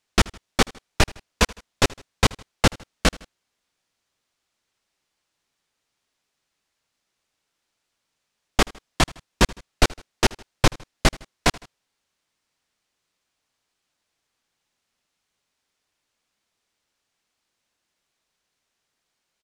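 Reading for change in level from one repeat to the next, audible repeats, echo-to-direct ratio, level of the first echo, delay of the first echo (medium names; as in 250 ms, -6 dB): -5.5 dB, 2, -21.5 dB, -22.5 dB, 79 ms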